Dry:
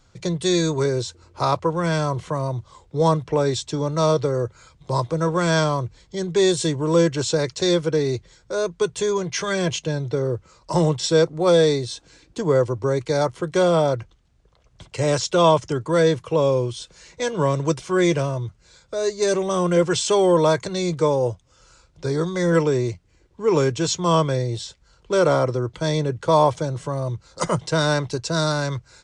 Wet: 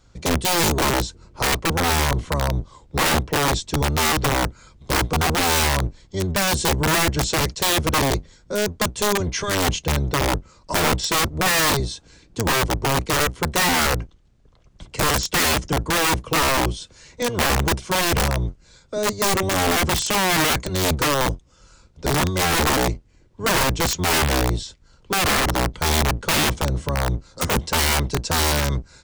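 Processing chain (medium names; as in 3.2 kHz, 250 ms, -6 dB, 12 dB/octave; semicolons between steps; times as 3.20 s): octave divider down 1 oct, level +3 dB; integer overflow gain 14 dB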